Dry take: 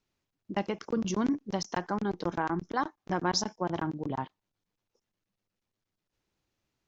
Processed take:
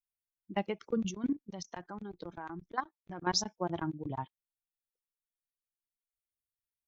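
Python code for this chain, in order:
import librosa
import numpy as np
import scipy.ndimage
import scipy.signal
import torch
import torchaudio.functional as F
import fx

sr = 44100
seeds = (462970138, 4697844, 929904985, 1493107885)

y = fx.bin_expand(x, sr, power=1.5)
y = fx.level_steps(y, sr, step_db=14, at=(1.09, 3.27), fade=0.02)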